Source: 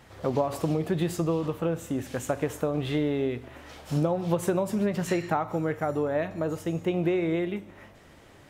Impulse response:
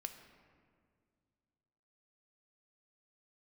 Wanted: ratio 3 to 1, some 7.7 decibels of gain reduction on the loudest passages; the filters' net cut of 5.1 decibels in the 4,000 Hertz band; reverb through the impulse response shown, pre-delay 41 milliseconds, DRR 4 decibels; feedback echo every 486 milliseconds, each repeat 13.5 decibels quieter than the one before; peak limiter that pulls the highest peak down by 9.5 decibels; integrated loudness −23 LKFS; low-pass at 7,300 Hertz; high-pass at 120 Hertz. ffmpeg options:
-filter_complex "[0:a]highpass=120,lowpass=7300,equalizer=frequency=4000:width_type=o:gain=-6.5,acompressor=threshold=-32dB:ratio=3,alimiter=level_in=2.5dB:limit=-24dB:level=0:latency=1,volume=-2.5dB,aecho=1:1:486|972:0.211|0.0444,asplit=2[link_01][link_02];[1:a]atrim=start_sample=2205,adelay=41[link_03];[link_02][link_03]afir=irnorm=-1:irlink=0,volume=-1dB[link_04];[link_01][link_04]amix=inputs=2:normalize=0,volume=12.5dB"

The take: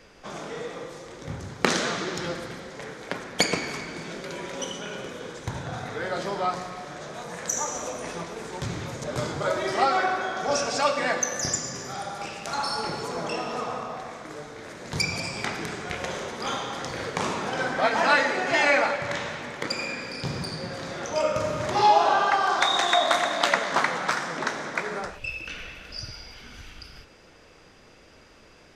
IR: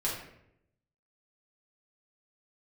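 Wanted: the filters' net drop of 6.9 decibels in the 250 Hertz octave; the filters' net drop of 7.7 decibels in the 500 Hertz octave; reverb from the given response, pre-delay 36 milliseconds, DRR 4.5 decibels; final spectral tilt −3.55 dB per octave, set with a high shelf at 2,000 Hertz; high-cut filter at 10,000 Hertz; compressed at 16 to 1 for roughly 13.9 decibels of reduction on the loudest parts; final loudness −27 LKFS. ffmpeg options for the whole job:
-filter_complex "[0:a]lowpass=10000,equalizer=frequency=250:width_type=o:gain=-7,equalizer=frequency=500:width_type=o:gain=-8,highshelf=frequency=2000:gain=-7,acompressor=threshold=-32dB:ratio=16,asplit=2[link_01][link_02];[1:a]atrim=start_sample=2205,adelay=36[link_03];[link_02][link_03]afir=irnorm=-1:irlink=0,volume=-10.5dB[link_04];[link_01][link_04]amix=inputs=2:normalize=0,volume=9.5dB"

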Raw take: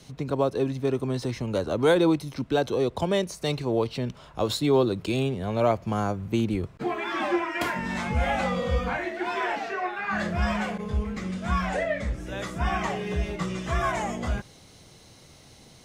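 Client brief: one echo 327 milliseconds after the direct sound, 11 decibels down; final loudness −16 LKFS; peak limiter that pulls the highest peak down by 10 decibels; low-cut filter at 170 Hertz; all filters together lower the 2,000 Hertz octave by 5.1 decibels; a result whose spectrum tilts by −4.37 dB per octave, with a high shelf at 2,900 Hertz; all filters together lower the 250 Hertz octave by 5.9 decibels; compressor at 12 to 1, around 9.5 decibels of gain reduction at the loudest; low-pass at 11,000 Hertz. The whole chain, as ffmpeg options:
ffmpeg -i in.wav -af "highpass=170,lowpass=11000,equalizer=frequency=250:width_type=o:gain=-7,equalizer=frequency=2000:width_type=o:gain=-8.5,highshelf=frequency=2900:gain=5,acompressor=threshold=-28dB:ratio=12,alimiter=level_in=3.5dB:limit=-24dB:level=0:latency=1,volume=-3.5dB,aecho=1:1:327:0.282,volume=20.5dB" out.wav

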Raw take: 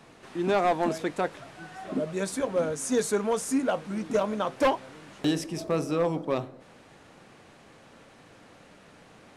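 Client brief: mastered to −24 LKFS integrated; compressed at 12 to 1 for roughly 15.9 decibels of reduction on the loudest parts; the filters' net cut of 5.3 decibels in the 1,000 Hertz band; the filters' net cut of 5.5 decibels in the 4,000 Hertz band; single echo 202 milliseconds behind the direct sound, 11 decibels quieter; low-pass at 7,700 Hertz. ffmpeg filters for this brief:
ffmpeg -i in.wav -af "lowpass=7700,equalizer=frequency=1000:width_type=o:gain=-7.5,equalizer=frequency=4000:width_type=o:gain=-6.5,acompressor=threshold=-38dB:ratio=12,aecho=1:1:202:0.282,volume=19dB" out.wav

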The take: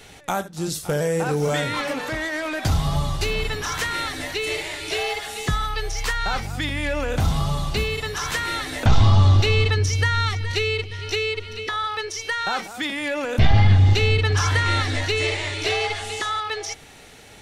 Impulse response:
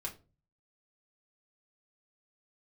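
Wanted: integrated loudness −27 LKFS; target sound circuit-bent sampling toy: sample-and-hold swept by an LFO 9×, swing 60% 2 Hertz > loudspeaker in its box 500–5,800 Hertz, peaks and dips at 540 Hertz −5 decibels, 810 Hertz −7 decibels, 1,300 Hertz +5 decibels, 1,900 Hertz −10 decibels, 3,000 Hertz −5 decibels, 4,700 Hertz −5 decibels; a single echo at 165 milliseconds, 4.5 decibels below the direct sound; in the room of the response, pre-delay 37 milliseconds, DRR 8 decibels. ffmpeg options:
-filter_complex "[0:a]aecho=1:1:165:0.596,asplit=2[link_01][link_02];[1:a]atrim=start_sample=2205,adelay=37[link_03];[link_02][link_03]afir=irnorm=-1:irlink=0,volume=-7.5dB[link_04];[link_01][link_04]amix=inputs=2:normalize=0,acrusher=samples=9:mix=1:aa=0.000001:lfo=1:lforange=5.4:lforate=2,highpass=500,equalizer=frequency=540:width_type=q:width=4:gain=-5,equalizer=frequency=810:width_type=q:width=4:gain=-7,equalizer=frequency=1300:width_type=q:width=4:gain=5,equalizer=frequency=1900:width_type=q:width=4:gain=-10,equalizer=frequency=3000:width_type=q:width=4:gain=-5,equalizer=frequency=4700:width_type=q:width=4:gain=-5,lowpass=frequency=5800:width=0.5412,lowpass=frequency=5800:width=1.3066"

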